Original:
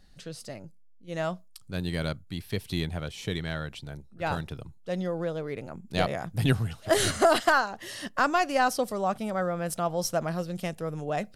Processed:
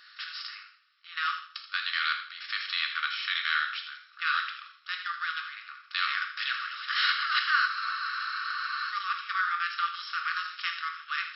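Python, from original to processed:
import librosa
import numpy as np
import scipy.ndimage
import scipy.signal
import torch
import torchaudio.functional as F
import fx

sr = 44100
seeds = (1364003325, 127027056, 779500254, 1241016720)

y = fx.bin_compress(x, sr, power=0.6)
y = fx.level_steps(y, sr, step_db=13)
y = fx.brickwall_bandpass(y, sr, low_hz=1100.0, high_hz=5500.0)
y = fx.echo_feedback(y, sr, ms=81, feedback_pct=36, wet_db=-13.5)
y = fx.rev_gated(y, sr, seeds[0], gate_ms=180, shape='falling', drr_db=2.5)
y = fx.spec_freeze(y, sr, seeds[1], at_s=7.72, hold_s=1.18)
y = F.gain(torch.from_numpy(y), 4.0).numpy()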